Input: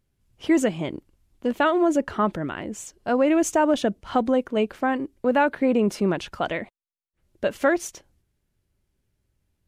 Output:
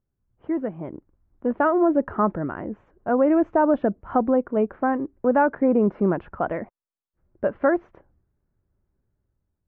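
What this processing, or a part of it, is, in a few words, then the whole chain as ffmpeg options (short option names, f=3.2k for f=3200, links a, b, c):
action camera in a waterproof case: -af "lowpass=f=1.5k:w=0.5412,lowpass=f=1.5k:w=1.3066,dynaudnorm=f=750:g=3:m=11.5dB,volume=-7dB" -ar 44100 -c:a aac -b:a 128k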